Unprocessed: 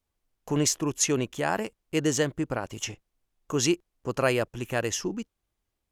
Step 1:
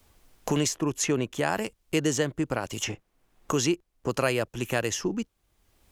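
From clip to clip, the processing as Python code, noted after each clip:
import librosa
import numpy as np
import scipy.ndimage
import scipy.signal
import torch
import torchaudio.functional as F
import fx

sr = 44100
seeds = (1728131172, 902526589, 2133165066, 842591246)

y = fx.band_squash(x, sr, depth_pct=70)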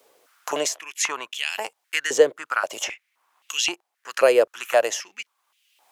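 y = fx.filter_held_highpass(x, sr, hz=3.8, low_hz=480.0, high_hz=2800.0)
y = y * 10.0 ** (2.5 / 20.0)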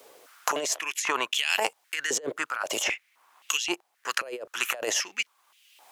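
y = fx.over_compress(x, sr, threshold_db=-30.0, ratio=-1.0)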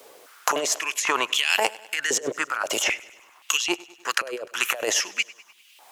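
y = fx.echo_feedback(x, sr, ms=100, feedback_pct=58, wet_db=-21.0)
y = y * 10.0 ** (4.0 / 20.0)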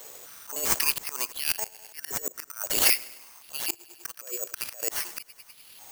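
y = fx.auto_swell(x, sr, attack_ms=359.0)
y = (np.kron(y[::6], np.eye(6)[0]) * 6)[:len(y)]
y = y * 10.0 ** (-3.5 / 20.0)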